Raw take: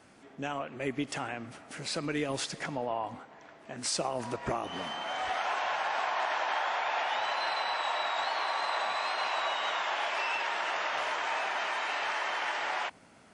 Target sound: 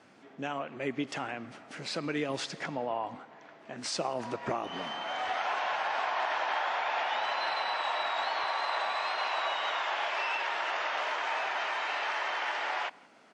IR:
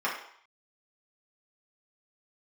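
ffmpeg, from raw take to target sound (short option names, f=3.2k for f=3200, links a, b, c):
-filter_complex "[0:a]asetnsamples=n=441:p=0,asendcmd='8.44 highpass f 280',highpass=130,lowpass=5.7k,asplit=2[a][b];[b]adelay=169.1,volume=-25dB,highshelf=f=4k:g=-3.8[c];[a][c]amix=inputs=2:normalize=0"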